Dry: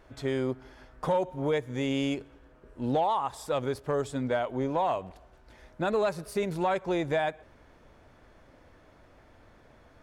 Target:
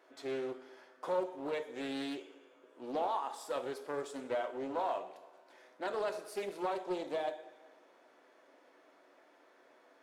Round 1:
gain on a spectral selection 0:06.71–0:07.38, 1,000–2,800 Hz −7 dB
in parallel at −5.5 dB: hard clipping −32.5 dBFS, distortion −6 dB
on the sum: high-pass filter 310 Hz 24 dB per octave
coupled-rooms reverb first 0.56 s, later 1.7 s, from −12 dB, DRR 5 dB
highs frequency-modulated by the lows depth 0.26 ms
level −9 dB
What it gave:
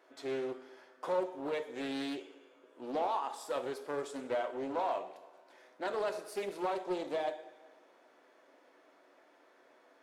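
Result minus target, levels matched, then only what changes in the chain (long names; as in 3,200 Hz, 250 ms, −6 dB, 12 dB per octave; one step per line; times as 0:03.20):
hard clipping: distortion −5 dB
change: hard clipping −44 dBFS, distortion −2 dB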